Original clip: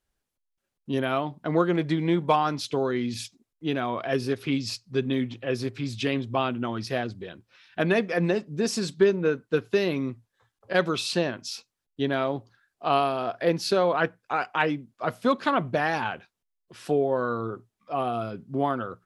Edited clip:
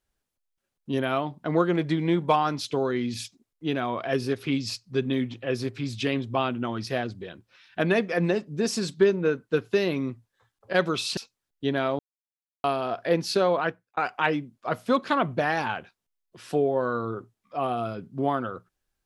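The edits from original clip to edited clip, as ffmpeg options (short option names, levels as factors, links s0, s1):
-filter_complex "[0:a]asplit=5[s0][s1][s2][s3][s4];[s0]atrim=end=11.172[s5];[s1]atrim=start=11.528:end=12.35,asetpts=PTS-STARTPTS,afade=t=out:st=0.818:d=0.004:c=hsin[s6];[s2]atrim=start=12.35:end=13,asetpts=PTS-STARTPTS,volume=0[s7];[s3]atrim=start=13:end=14.33,asetpts=PTS-STARTPTS,afade=t=in:d=0.004:c=hsin,afade=t=out:st=0.9:d=0.43[s8];[s4]atrim=start=14.33,asetpts=PTS-STARTPTS,afade=t=in:d=0.004:c=hsin[s9];[s6][s7][s8][s9]concat=n=4:v=0:a=1[s10];[s5][s10]acrossfade=d=0.004:c1=hsin:c2=hsin"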